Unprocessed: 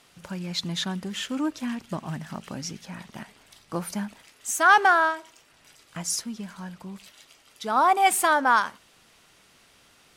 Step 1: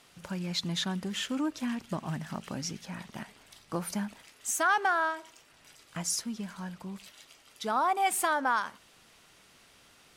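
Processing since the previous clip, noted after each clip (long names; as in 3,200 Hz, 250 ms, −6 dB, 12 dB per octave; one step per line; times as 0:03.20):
downward compressor 2 to 1, threshold −27 dBFS, peak gain reduction 8.5 dB
level −1.5 dB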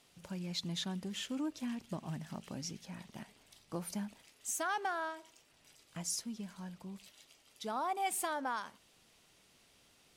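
parametric band 1,400 Hz −6 dB 1.2 octaves
level −6 dB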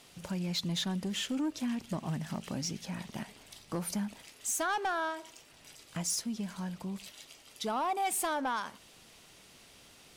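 in parallel at −2 dB: downward compressor, threshold −45 dBFS, peak gain reduction 14 dB
on the sum: soft clipping −30 dBFS, distortion −17 dB
level +4.5 dB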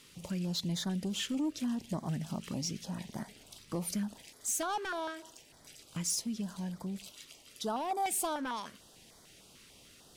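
notch on a step sequencer 6.7 Hz 720–2,700 Hz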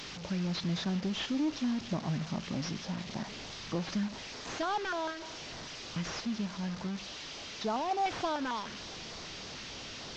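linear delta modulator 32 kbit/s, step −39 dBFS
level +2 dB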